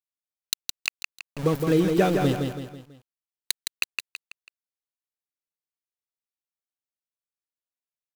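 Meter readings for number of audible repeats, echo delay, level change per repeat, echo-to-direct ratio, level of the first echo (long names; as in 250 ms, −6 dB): 4, 164 ms, −7.5 dB, −4.0 dB, −5.0 dB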